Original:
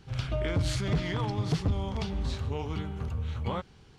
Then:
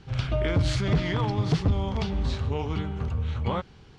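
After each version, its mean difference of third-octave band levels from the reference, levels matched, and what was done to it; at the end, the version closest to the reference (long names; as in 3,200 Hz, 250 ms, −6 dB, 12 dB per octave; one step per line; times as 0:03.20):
1.0 dB: Bessel low-pass filter 5,600 Hz, order 2
level +4.5 dB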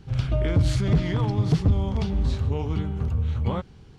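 4.0 dB: low-shelf EQ 480 Hz +8.5 dB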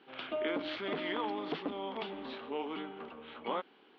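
9.0 dB: elliptic band-pass filter 270–3,300 Hz, stop band 40 dB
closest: first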